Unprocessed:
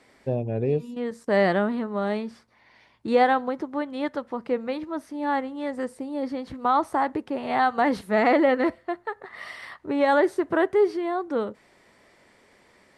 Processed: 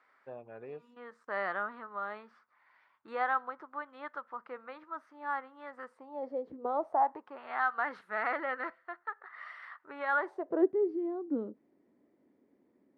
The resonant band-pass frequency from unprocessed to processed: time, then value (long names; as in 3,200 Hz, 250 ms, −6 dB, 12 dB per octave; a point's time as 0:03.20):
resonant band-pass, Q 3.7
0:05.92 1,300 Hz
0:06.55 370 Hz
0:07.42 1,400 Hz
0:10.16 1,400 Hz
0:10.72 280 Hz